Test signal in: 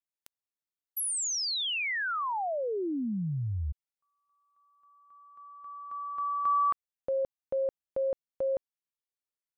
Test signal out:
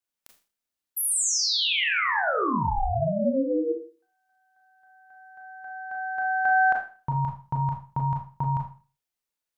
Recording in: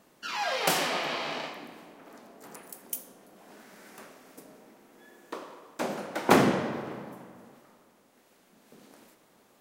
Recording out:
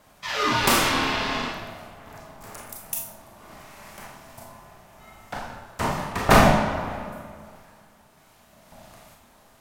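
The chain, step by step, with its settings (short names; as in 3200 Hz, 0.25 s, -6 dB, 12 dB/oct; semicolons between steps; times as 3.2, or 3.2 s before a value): ring modulator 400 Hz; Schroeder reverb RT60 0.37 s, combs from 26 ms, DRR 0.5 dB; gain +7 dB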